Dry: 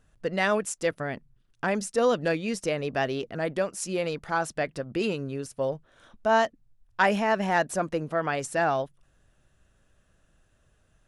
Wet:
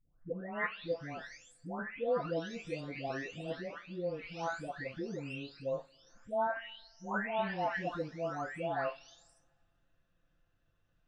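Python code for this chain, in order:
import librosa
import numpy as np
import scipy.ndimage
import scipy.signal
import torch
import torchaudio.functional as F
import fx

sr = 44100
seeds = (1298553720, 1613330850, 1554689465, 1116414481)

y = fx.spec_delay(x, sr, highs='late', ms=846)
y = scipy.signal.sosfilt(scipy.signal.butter(4, 5200.0, 'lowpass', fs=sr, output='sos'), y)
y = fx.rev_double_slope(y, sr, seeds[0], early_s=0.21, late_s=2.1, knee_db=-28, drr_db=7.5)
y = y * 10.0 ** (-9.0 / 20.0)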